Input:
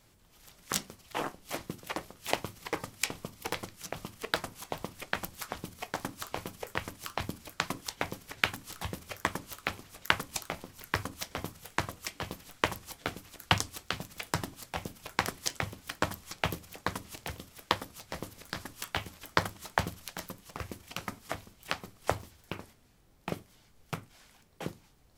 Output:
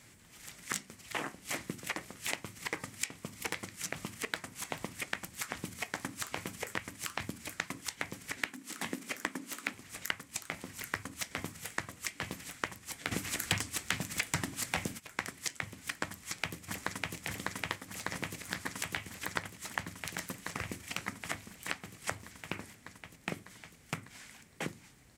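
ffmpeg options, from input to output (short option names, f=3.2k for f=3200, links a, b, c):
-filter_complex "[0:a]asettb=1/sr,asplit=3[a][b][c];[a]atrim=end=8.374[d];[b]atrim=start=8.37:end=9.74,asetpts=PTS-STARTPTS,afade=t=in:d=0.004:c=qsin,afade=t=out:st=1.366:d=0.004:c=qsin,highpass=f=250:t=q:w=3.1[e];[c]atrim=start=9.736[f];[d][e]acrossfade=d=0.004:c1=hsin:c2=qsin[g];[g][f]acrossfade=d=0.004:c1=qsin:c2=hsin,asplit=3[h][i][j];[h]afade=t=out:st=13.11:d=0.02[k];[i]aeval=exprs='0.75*sin(PI/2*6.31*val(0)/0.75)':c=same,afade=t=in:st=13.11:d=0.02,afade=t=out:st=14.98:d=0.02[l];[j]afade=t=in:st=14.98:d=0.02[m];[k][l][m]amix=inputs=3:normalize=0,asplit=2[n][o];[o]afade=t=in:st=16.08:d=0.01,afade=t=out:st=17.16:d=0.01,aecho=0:1:600|1200|1800|2400|3000|3600|4200|4800|5400|6000|6600|7200:0.841395|0.631046|0.473285|0.354964|0.266223|0.199667|0.14975|0.112313|0.0842345|0.0631759|0.0473819|0.0355364[p];[n][p]amix=inputs=2:normalize=0,equalizer=f=125:t=o:w=1:g=4,equalizer=f=250:t=o:w=1:g=6,equalizer=f=2k:t=o:w=1:g=11,equalizer=f=8k:t=o:w=1:g=10,acompressor=threshold=-34dB:ratio=5,highpass=47"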